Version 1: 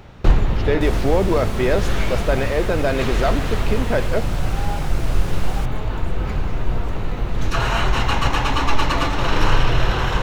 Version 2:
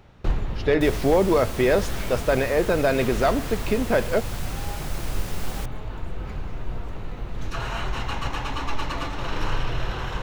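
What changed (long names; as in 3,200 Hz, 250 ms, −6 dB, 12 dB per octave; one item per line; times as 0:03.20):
first sound −9.5 dB
second sound: remove meter weighting curve A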